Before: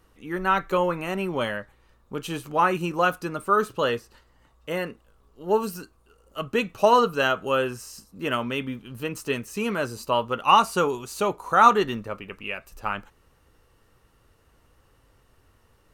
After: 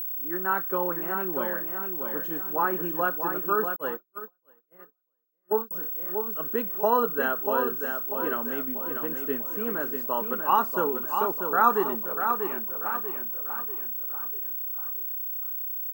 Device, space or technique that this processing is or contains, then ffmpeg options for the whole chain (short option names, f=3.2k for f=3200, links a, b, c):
old television with a line whistle: -filter_complex "[0:a]highpass=f=190:w=0.5412,highpass=f=190:w=1.3066,equalizer=f=200:t=q:w=4:g=-4,equalizer=f=580:t=q:w=4:g=-5,equalizer=f=1.6k:t=q:w=4:g=7,equalizer=f=2.5k:t=q:w=4:g=-8,equalizer=f=7.9k:t=q:w=4:g=3,lowpass=f=8.8k:w=0.5412,lowpass=f=8.8k:w=1.3066,firequalizer=gain_entry='entry(430,0);entry(3600,-16);entry(15000,-5)':delay=0.05:min_phase=1,aecho=1:1:641|1282|1923|2564|3205:0.501|0.221|0.097|0.0427|0.0188,aeval=exprs='val(0)+0.0447*sin(2*PI*15734*n/s)':c=same,asettb=1/sr,asplit=3[a][b][c];[a]atrim=end=3.764[d];[b]atrim=start=3.76:end=5.71,asetpts=PTS-STARTPTS,afade=t=in:d=0.004:c=qsin,afade=t=out:st=1.946:d=0.004:c=qsin,agate=range=-47dB:threshold=-23dB:ratio=16:detection=peak[e];[c]atrim=start=5.706[f];[d][e]acrossfade=d=0.004:c1=hsin:c2=qsin[g];[g][f]acrossfade=d=0.004:c1=qsin:c2=hsin,volume=-2.5dB"